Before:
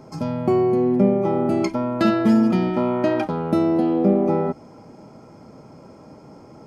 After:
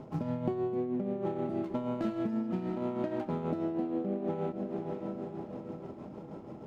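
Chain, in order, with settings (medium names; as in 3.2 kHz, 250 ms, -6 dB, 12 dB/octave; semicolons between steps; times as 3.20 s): median filter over 25 samples; treble shelf 3.3 kHz -10 dB; echo that smears into a reverb 557 ms, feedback 55%, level -15 dB; compression 10:1, threshold -28 dBFS, peak gain reduction 16 dB; tremolo 6.3 Hz, depth 49%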